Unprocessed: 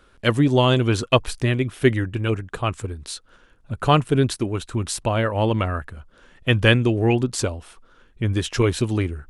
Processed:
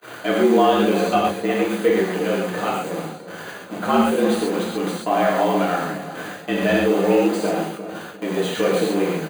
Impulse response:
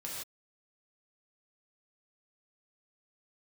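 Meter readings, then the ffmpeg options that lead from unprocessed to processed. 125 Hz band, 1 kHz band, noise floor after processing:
-11.0 dB, +5.0 dB, -37 dBFS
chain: -filter_complex "[0:a]aeval=exprs='val(0)+0.5*0.119*sgn(val(0))':c=same,highpass=f=350:p=1,deesser=0.55,agate=range=0.0224:threshold=0.0316:ratio=16:detection=peak,asplit=2[s0][s1];[s1]acrusher=bits=5:mix=0:aa=0.000001,volume=0.398[s2];[s0][s2]amix=inputs=2:normalize=0[s3];[1:a]atrim=start_sample=2205,asetrate=52920,aresample=44100[s4];[s3][s4]afir=irnorm=-1:irlink=0,afreqshift=81,asuperstop=centerf=5400:order=12:qfactor=6.9,asplit=2[s5][s6];[s6]adelay=354,lowpass=f=870:p=1,volume=0.316,asplit=2[s7][s8];[s8]adelay=354,lowpass=f=870:p=1,volume=0.4,asplit=2[s9][s10];[s10]adelay=354,lowpass=f=870:p=1,volume=0.4,asplit=2[s11][s12];[s12]adelay=354,lowpass=f=870:p=1,volume=0.4[s13];[s5][s7][s9][s11][s13]amix=inputs=5:normalize=0,volume=1.26"

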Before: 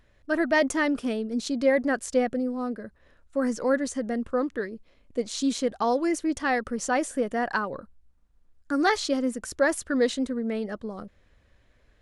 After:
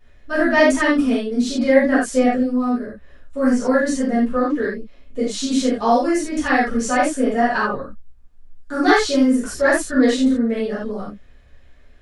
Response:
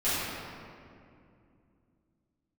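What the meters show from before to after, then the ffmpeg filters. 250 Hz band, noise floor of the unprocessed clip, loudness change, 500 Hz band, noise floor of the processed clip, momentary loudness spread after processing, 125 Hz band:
+9.5 dB, -63 dBFS, +8.5 dB, +7.0 dB, -47 dBFS, 12 LU, no reading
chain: -filter_complex "[1:a]atrim=start_sample=2205,atrim=end_sample=4410[s0];[0:a][s0]afir=irnorm=-1:irlink=0,volume=0.891"

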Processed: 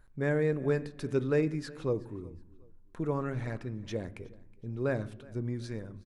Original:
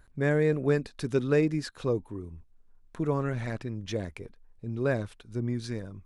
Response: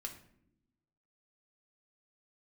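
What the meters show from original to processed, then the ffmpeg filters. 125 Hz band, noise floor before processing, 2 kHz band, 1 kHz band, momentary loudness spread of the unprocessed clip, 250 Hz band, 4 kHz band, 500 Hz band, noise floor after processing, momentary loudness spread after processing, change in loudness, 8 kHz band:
-3.5 dB, -58 dBFS, -4.0 dB, -3.0 dB, 16 LU, -3.5 dB, -6.5 dB, -3.0 dB, -55 dBFS, 15 LU, -3.5 dB, -6.5 dB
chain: -filter_complex "[0:a]aecho=1:1:369|738:0.0708|0.0227,asplit=2[s0][s1];[1:a]atrim=start_sample=2205,lowpass=2600[s2];[s1][s2]afir=irnorm=-1:irlink=0,volume=0.668[s3];[s0][s3]amix=inputs=2:normalize=0,volume=0.501"

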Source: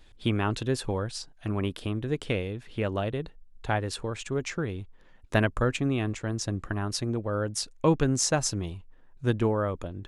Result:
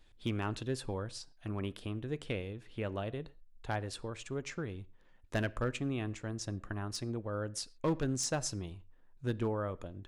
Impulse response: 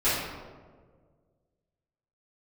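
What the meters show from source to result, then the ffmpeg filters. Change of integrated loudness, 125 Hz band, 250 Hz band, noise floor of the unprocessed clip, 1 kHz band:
-8.5 dB, -8.5 dB, -8.5 dB, -55 dBFS, -9.0 dB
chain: -filter_complex "[0:a]volume=7.08,asoftclip=hard,volume=0.141,asplit=2[s0][s1];[1:a]atrim=start_sample=2205,atrim=end_sample=6174[s2];[s1][s2]afir=irnorm=-1:irlink=0,volume=0.0251[s3];[s0][s3]amix=inputs=2:normalize=0,volume=0.376"

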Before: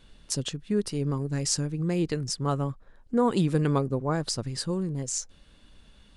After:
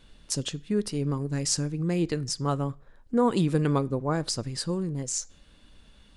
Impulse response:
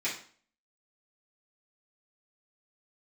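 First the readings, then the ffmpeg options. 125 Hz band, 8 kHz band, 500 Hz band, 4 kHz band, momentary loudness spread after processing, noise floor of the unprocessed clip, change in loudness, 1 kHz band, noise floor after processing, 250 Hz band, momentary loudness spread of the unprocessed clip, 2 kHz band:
-0.5 dB, +0.5 dB, 0.0 dB, +0.5 dB, 7 LU, -56 dBFS, 0.0 dB, +0.5 dB, -56 dBFS, +0.5 dB, 7 LU, +0.5 dB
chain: -filter_complex "[0:a]asplit=2[s0][s1];[1:a]atrim=start_sample=2205[s2];[s1][s2]afir=irnorm=-1:irlink=0,volume=0.0668[s3];[s0][s3]amix=inputs=2:normalize=0"

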